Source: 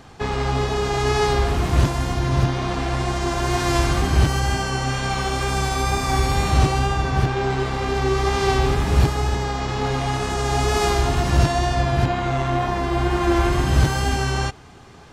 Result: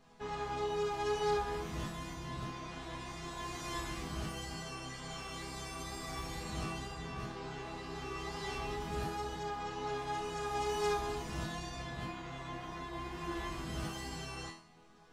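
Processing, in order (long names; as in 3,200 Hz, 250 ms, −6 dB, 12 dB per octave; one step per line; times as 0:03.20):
resonators tuned to a chord E3 major, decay 0.5 s
level +2 dB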